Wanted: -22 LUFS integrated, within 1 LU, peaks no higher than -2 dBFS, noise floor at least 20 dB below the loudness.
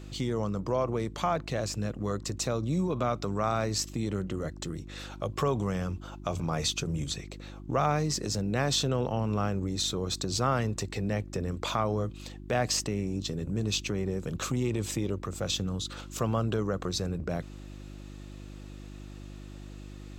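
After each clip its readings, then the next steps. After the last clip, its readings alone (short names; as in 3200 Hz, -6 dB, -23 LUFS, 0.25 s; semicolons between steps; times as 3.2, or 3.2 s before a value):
hum 50 Hz; harmonics up to 350 Hz; hum level -42 dBFS; loudness -31.0 LUFS; peak -14.0 dBFS; loudness target -22.0 LUFS
-> de-hum 50 Hz, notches 7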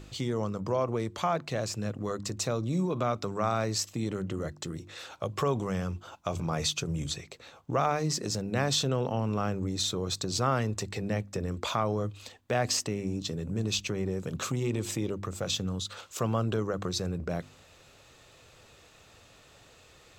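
hum none; loudness -31.5 LUFS; peak -14.0 dBFS; loudness target -22.0 LUFS
-> gain +9.5 dB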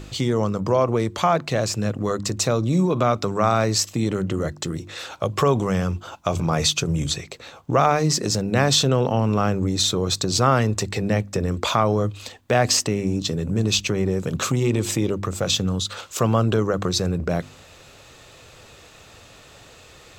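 loudness -22.0 LUFS; peak -4.5 dBFS; noise floor -48 dBFS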